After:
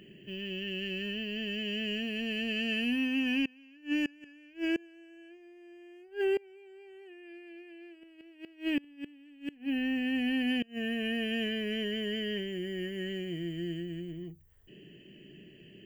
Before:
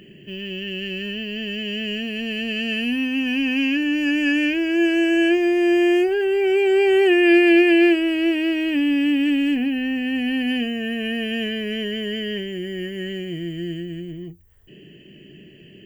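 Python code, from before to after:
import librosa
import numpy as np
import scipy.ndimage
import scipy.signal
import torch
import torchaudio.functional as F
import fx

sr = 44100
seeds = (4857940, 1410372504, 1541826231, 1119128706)

y = fx.hum_notches(x, sr, base_hz=50, count=3)
y = fx.gate_flip(y, sr, shuts_db=-14.0, range_db=-28)
y = y * librosa.db_to_amplitude(-7.5)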